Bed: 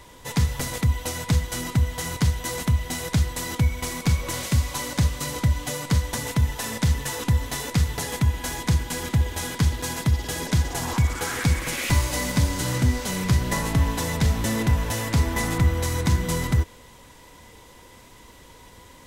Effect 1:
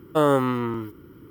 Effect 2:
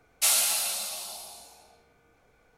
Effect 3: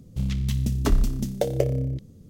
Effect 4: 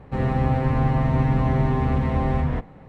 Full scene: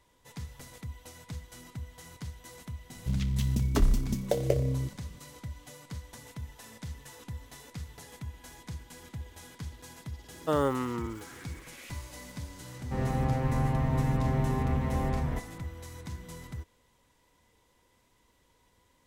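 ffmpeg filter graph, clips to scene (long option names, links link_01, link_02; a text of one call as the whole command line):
ffmpeg -i bed.wav -i cue0.wav -i cue1.wav -i cue2.wav -i cue3.wav -filter_complex "[0:a]volume=-19.5dB[link_01];[3:a]atrim=end=2.29,asetpts=PTS-STARTPTS,volume=-3.5dB,afade=type=in:duration=0.004:curve=hsin,afade=type=out:start_time=2.286:duration=0.004:curve=hsin,adelay=2900[link_02];[1:a]atrim=end=1.3,asetpts=PTS-STARTPTS,volume=-8dB,afade=type=in:duration=0.004:curve=hsin,afade=type=out:start_time=1.296:duration=0.004:curve=hsin,adelay=10320[link_03];[4:a]atrim=end=2.88,asetpts=PTS-STARTPTS,volume=-7.5dB,afade=type=in:duration=0.004:curve=hsin,afade=type=out:start_time=2.876:duration=0.004:curve=hsin,adelay=12790[link_04];[link_01][link_02][link_03][link_04]amix=inputs=4:normalize=0" out.wav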